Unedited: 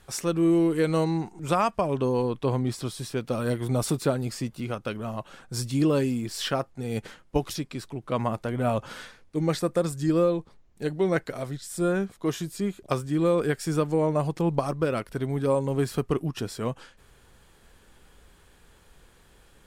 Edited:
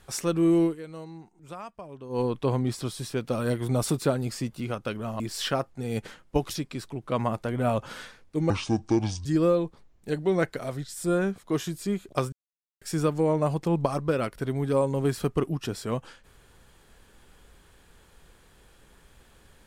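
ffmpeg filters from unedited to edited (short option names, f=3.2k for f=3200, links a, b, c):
-filter_complex "[0:a]asplit=8[a][b][c][d][e][f][g][h];[a]atrim=end=0.76,asetpts=PTS-STARTPTS,afade=t=out:st=0.64:d=0.12:silence=0.149624[i];[b]atrim=start=0.76:end=2.09,asetpts=PTS-STARTPTS,volume=-16.5dB[j];[c]atrim=start=2.09:end=5.202,asetpts=PTS-STARTPTS,afade=t=in:d=0.12:silence=0.149624[k];[d]atrim=start=6.198:end=9.504[l];[e]atrim=start=9.5:end=9.99,asetpts=PTS-STARTPTS,asetrate=28665,aresample=44100[m];[f]atrim=start=9.986:end=13.06,asetpts=PTS-STARTPTS,afade=t=out:st=3.07:d=0.004:c=hsin[n];[g]atrim=start=13.06:end=13.55,asetpts=PTS-STARTPTS,volume=0[o];[h]atrim=start=13.55,asetpts=PTS-STARTPTS,afade=t=in:d=0.004:c=hsin[p];[i][j][k]concat=n=3:v=0:a=1[q];[q][l]acrossfade=d=0.004:c1=hsin:c2=hsin[r];[r][m]acrossfade=d=0.004:c1=hsin:c2=hsin[s];[n][o][p]concat=n=3:v=0:a=1[t];[s][t]acrossfade=d=0.004:c1=hsin:c2=hsin"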